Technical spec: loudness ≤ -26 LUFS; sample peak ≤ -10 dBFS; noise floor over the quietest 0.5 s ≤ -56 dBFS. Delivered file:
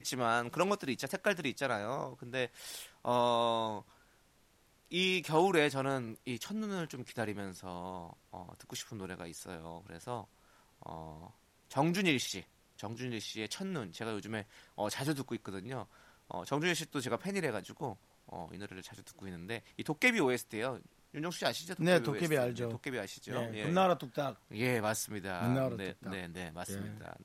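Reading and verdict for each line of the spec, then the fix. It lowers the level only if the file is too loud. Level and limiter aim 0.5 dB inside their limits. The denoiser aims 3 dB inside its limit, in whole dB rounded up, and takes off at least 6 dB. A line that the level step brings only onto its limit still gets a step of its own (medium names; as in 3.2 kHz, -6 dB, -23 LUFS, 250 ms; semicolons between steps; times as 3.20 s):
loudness -35.5 LUFS: pass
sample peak -14.5 dBFS: pass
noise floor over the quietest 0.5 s -68 dBFS: pass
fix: none needed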